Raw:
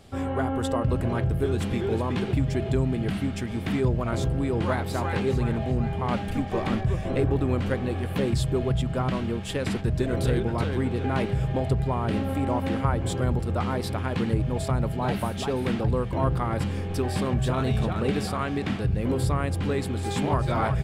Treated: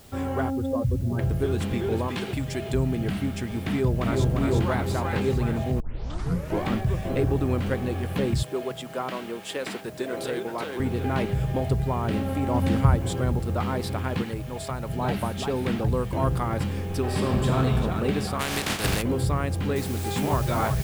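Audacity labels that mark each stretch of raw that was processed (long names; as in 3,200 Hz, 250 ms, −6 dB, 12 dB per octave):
0.500000	1.190000	expanding power law on the bin magnitudes exponent 2.1
2.080000	2.740000	spectral tilt +2 dB per octave
3.650000	4.260000	delay throw 350 ms, feedback 60%, level −3 dB
5.800000	5.800000	tape start 0.86 s
8.430000	10.800000	high-pass filter 360 Hz
12.540000	12.960000	bass and treble bass +7 dB, treble +7 dB
14.220000	14.890000	low-shelf EQ 450 Hz −9.5 dB
15.900000	16.410000	high-shelf EQ 8,100 Hz → 5,600 Hz +9.5 dB
16.990000	17.560000	thrown reverb, RT60 2.3 s, DRR 0.5 dB
18.390000	19.010000	compressing power law on the bin magnitudes exponent 0.41
19.760000	19.760000	noise floor change −55 dB −41 dB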